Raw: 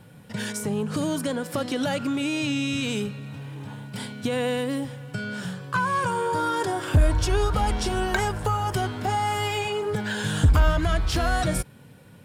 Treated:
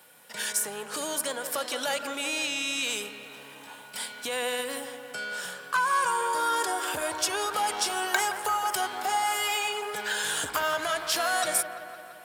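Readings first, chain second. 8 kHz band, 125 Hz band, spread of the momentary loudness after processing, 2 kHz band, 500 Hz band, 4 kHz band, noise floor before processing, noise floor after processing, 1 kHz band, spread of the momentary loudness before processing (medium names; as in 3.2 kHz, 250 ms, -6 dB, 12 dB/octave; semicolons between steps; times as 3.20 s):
+6.0 dB, under -25 dB, 11 LU, +1.0 dB, -5.5 dB, +2.0 dB, -49 dBFS, -47 dBFS, -0.5 dB, 12 LU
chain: high-pass 670 Hz 12 dB/octave; treble shelf 7.7 kHz +12 dB; feedback echo behind a low-pass 170 ms, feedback 67%, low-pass 2.2 kHz, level -10 dB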